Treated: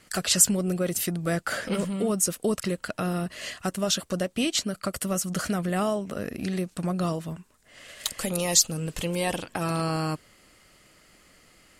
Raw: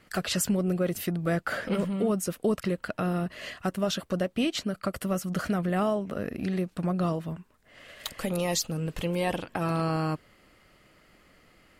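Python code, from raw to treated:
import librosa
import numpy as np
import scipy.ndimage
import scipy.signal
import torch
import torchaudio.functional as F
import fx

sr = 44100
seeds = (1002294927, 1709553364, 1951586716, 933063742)

y = fx.peak_eq(x, sr, hz=8000.0, db=12.5, octaves=1.7)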